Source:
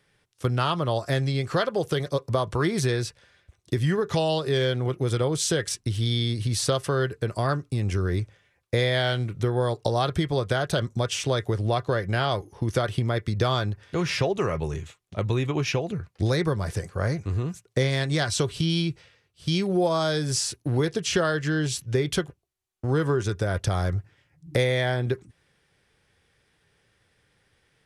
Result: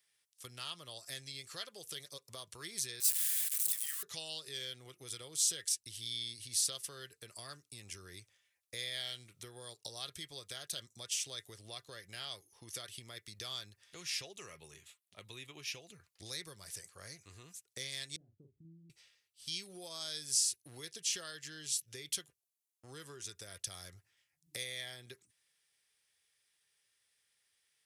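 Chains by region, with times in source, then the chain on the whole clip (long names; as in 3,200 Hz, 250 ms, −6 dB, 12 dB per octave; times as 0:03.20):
0:03.00–0:04.03: converter with a step at zero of −27 dBFS + Butterworth high-pass 1,100 Hz 96 dB per octave + high shelf with overshoot 7,100 Hz +6.5 dB, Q 1.5
0:14.54–0:15.72: high-pass filter 80 Hz + parametric band 6,500 Hz −6.5 dB 0.61 octaves
0:18.16–0:18.90: transistor ladder low-pass 320 Hz, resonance 35% + double-tracking delay 43 ms −6 dB
whole clip: first-order pre-emphasis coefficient 0.97; notch filter 1,500 Hz, Q 14; dynamic equaliser 940 Hz, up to −8 dB, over −57 dBFS, Q 0.79; level −2 dB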